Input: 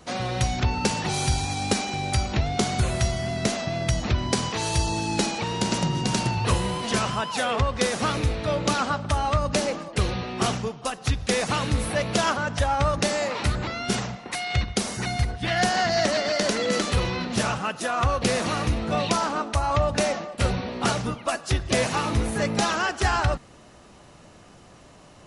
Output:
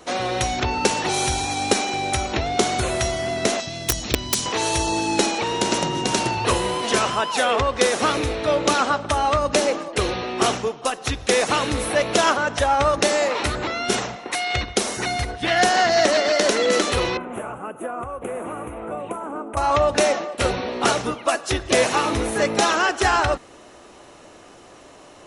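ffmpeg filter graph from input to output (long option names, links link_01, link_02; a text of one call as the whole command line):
ffmpeg -i in.wav -filter_complex "[0:a]asettb=1/sr,asplit=3[link_01][link_02][link_03];[link_01]atrim=end=3.604[link_04];[link_02]atrim=start=3.6:end=4.46,asetpts=PTS-STARTPTS,afade=type=in:duration=0.004:curve=qsin,afade=type=out:start_time=0.856:duration=0.004:curve=qsin,highshelf=frequency=3100:gain=4.5,acrossover=split=220|3000[link_05][link_06][link_07];[link_06]acompressor=threshold=-49dB:ratio=2:attack=3.2:release=140:knee=2.83:detection=peak[link_08];[link_05][link_08][link_07]amix=inputs=3:normalize=0,aeval=exprs='(mod(5.01*val(0)+1,2)-1)/5.01':channel_layout=same[link_09];[link_03]atrim=start=4.456[link_10];[link_04][link_09]acrossfade=duration=0.004:curve1=hsin:curve2=qsin[link_11];[link_11][link_10]acrossfade=duration=0.004:curve1=qsin:curve2=hsin,asettb=1/sr,asplit=3[link_12][link_13][link_14];[link_12]atrim=end=17.174[link_15];[link_13]atrim=start=17.17:end=19.57,asetpts=PTS-STARTPTS,afade=type=in:duration=0.004:curve=qsin,afade=type=out:start_time=2.396:duration=0.004:curve=qsin,asuperstop=centerf=4800:order=4:qfactor=0.52,equalizer=frequency=1800:width_type=o:width=0.24:gain=-8.5,acrossover=split=460|5000[link_16][link_17][link_18];[link_16]acompressor=threshold=-35dB:ratio=4[link_19];[link_17]acompressor=threshold=-38dB:ratio=4[link_20];[link_18]acompressor=threshold=-52dB:ratio=4[link_21];[link_19][link_20][link_21]amix=inputs=3:normalize=0[link_22];[link_14]atrim=start=19.566[link_23];[link_15][link_22]acrossfade=duration=0.004:curve1=hsin:curve2=qsin[link_24];[link_24][link_23]acrossfade=duration=0.004:curve1=qsin:curve2=hsin,lowshelf=frequency=240:width_type=q:width=1.5:gain=-8.5,bandreject=frequency=4700:width=14,volume=5dB" out.wav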